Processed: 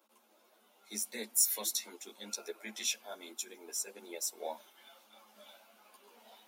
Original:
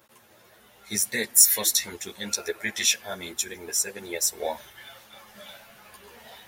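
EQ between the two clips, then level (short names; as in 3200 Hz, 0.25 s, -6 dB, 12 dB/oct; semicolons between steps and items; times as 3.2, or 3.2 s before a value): rippled Chebyshev high-pass 210 Hz, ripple 3 dB; bell 1800 Hz -12 dB 0.28 oct; -9.0 dB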